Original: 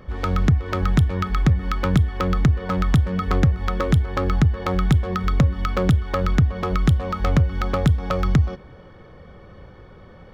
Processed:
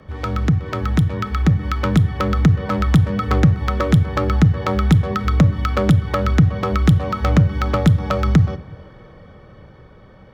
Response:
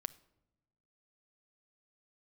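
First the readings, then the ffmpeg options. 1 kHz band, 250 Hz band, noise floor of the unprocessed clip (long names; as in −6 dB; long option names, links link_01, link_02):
+3.0 dB, +5.0 dB, −45 dBFS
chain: -filter_complex "[0:a]dynaudnorm=framelen=280:gausssize=11:maxgain=5.5dB,afreqshift=19[link_01];[1:a]atrim=start_sample=2205,afade=type=out:start_time=0.44:duration=0.01,atrim=end_sample=19845[link_02];[link_01][link_02]afir=irnorm=-1:irlink=0,volume=2dB"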